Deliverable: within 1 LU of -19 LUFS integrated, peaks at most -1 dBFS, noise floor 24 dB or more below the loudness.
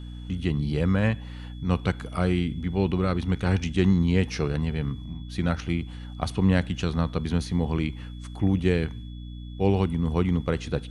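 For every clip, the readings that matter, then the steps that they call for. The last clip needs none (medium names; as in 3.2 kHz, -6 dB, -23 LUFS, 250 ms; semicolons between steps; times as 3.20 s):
hum 60 Hz; highest harmonic 300 Hz; hum level -36 dBFS; steady tone 3.4 kHz; tone level -53 dBFS; loudness -26.5 LUFS; peak level -7.5 dBFS; loudness target -19.0 LUFS
-> hum notches 60/120/180/240/300 Hz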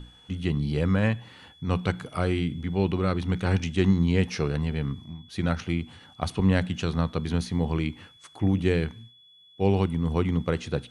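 hum not found; steady tone 3.4 kHz; tone level -53 dBFS
-> band-stop 3.4 kHz, Q 30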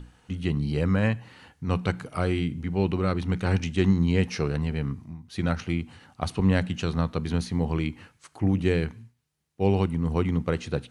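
steady tone not found; loudness -27.0 LUFS; peak level -7.5 dBFS; loudness target -19.0 LUFS
-> trim +8 dB; peak limiter -1 dBFS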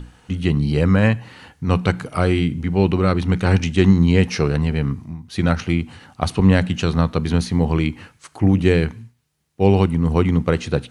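loudness -19.0 LUFS; peak level -1.0 dBFS; noise floor -57 dBFS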